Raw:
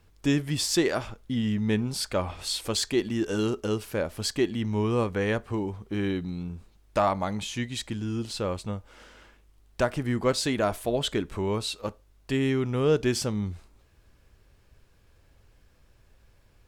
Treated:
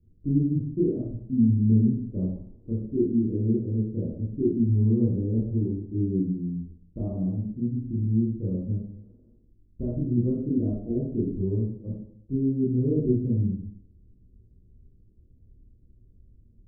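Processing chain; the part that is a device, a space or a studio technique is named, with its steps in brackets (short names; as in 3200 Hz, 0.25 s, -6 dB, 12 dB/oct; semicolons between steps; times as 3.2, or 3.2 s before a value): next room (LPF 310 Hz 24 dB/oct; reverb RT60 0.60 s, pre-delay 21 ms, DRR -7 dB); gain -2 dB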